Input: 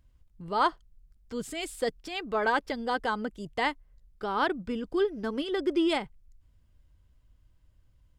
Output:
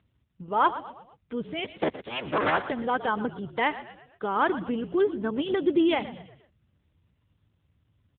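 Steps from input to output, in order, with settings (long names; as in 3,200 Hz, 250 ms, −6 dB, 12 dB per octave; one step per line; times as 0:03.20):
0:01.64–0:02.70: sub-harmonics by changed cycles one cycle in 3, inverted
echo with shifted repeats 118 ms, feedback 45%, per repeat −52 Hz, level −14 dB
level +3.5 dB
AMR narrowband 7.95 kbit/s 8,000 Hz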